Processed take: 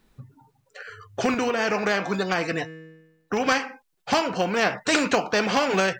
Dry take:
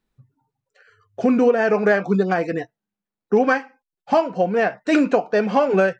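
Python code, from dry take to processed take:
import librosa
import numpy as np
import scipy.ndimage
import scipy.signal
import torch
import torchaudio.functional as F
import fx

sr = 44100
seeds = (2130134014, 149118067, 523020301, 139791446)

y = fx.comb_fb(x, sr, f0_hz=160.0, decay_s=0.99, harmonics='all', damping=0.0, mix_pct=40, at=(1.34, 3.46))
y = fx.spectral_comp(y, sr, ratio=2.0)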